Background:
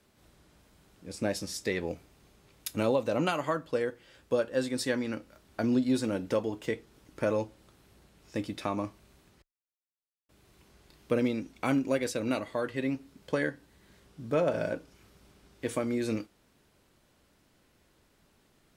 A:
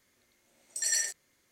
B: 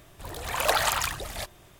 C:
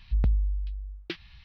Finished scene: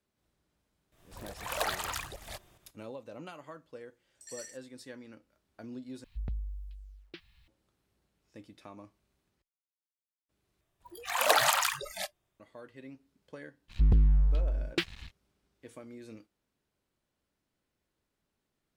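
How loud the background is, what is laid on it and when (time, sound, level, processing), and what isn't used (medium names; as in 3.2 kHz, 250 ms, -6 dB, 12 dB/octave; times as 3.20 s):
background -17 dB
0.92 s: add B -8.5 dB + volume shaper 145 bpm, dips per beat 1, -9 dB, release 234 ms
3.45 s: add A -18 dB
6.04 s: replace with C -12.5 dB + bit crusher 11-bit
10.61 s: replace with B -0.5 dB + spectral noise reduction 26 dB
13.68 s: add C -4 dB, fades 0.05 s + waveshaping leveller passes 3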